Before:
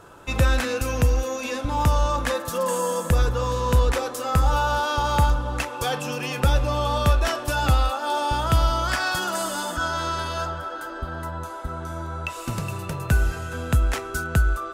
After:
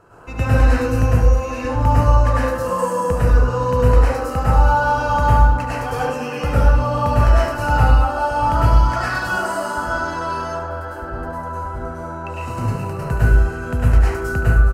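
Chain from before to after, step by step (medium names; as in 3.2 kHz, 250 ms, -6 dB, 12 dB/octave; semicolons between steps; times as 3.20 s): Butterworth band-stop 3.5 kHz, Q 5.9; treble shelf 2.9 kHz -10 dB; delay 72 ms -10.5 dB; plate-style reverb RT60 0.74 s, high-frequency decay 0.6×, pre-delay 90 ms, DRR -8 dB; trim -3.5 dB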